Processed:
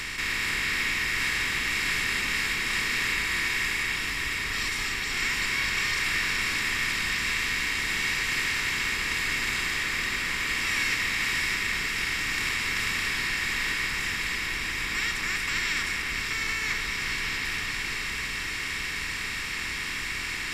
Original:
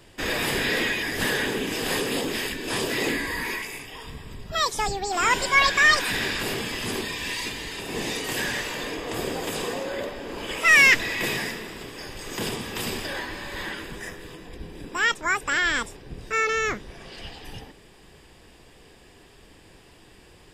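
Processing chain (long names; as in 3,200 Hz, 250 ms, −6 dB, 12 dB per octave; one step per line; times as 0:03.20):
compressor on every frequency bin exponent 0.2
guitar amp tone stack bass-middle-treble 6-0-2
delay that swaps between a low-pass and a high-pass 305 ms, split 2,100 Hz, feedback 84%, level −5 dB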